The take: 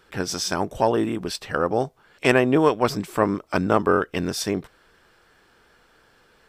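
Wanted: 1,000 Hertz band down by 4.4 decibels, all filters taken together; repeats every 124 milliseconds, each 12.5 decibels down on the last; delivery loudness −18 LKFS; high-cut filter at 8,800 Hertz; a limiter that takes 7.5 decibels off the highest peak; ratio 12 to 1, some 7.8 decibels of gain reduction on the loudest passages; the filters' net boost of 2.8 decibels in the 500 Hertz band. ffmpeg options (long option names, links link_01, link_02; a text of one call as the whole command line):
ffmpeg -i in.wav -af "lowpass=8800,equalizer=frequency=500:width_type=o:gain=5,equalizer=frequency=1000:width_type=o:gain=-7.5,acompressor=threshold=-19dB:ratio=12,alimiter=limit=-16.5dB:level=0:latency=1,aecho=1:1:124|248|372:0.237|0.0569|0.0137,volume=10dB" out.wav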